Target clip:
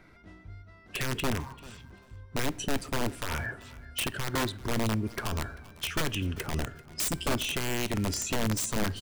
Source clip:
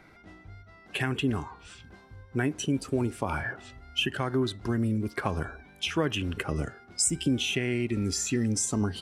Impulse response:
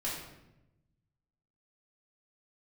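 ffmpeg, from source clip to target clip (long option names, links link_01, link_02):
-filter_complex "[0:a]aeval=exprs='(mod(11.2*val(0)+1,2)-1)/11.2':channel_layout=same,lowshelf=frequency=120:gain=6.5,bandreject=frequency=790:width=12,aecho=1:1:391|782:0.1|0.02,asplit=2[link_01][link_02];[1:a]atrim=start_sample=2205[link_03];[link_02][link_03]afir=irnorm=-1:irlink=0,volume=-22dB[link_04];[link_01][link_04]amix=inputs=2:normalize=0,volume=-3dB"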